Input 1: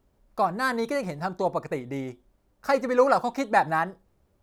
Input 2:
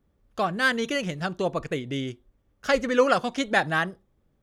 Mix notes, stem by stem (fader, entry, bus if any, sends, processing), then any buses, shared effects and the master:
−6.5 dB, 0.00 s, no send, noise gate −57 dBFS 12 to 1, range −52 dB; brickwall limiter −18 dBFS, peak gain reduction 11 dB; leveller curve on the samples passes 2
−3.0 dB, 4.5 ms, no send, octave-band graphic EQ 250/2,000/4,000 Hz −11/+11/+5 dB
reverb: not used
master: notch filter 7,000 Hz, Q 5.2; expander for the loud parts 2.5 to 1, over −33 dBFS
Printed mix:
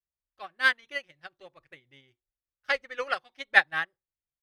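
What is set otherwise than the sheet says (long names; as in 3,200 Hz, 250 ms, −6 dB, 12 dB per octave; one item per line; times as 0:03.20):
stem 1 −6.5 dB → −12.5 dB
stem 2: polarity flipped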